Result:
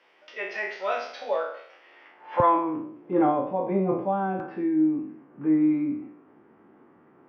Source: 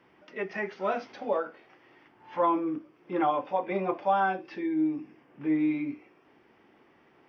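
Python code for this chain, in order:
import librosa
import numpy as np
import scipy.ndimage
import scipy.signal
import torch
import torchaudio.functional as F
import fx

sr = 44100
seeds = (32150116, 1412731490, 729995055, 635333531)

y = fx.spec_trails(x, sr, decay_s=0.63)
y = fx.filter_sweep_bandpass(y, sr, from_hz=4000.0, to_hz=220.0, start_s=1.67, end_s=3.56, q=0.77)
y = fx.peak_eq(y, sr, hz=fx.steps((0.0, 540.0), (2.4, 120.0), (4.4, 1300.0)), db=10.0, octaves=1.1)
y = F.gain(torch.from_numpy(y), 5.5).numpy()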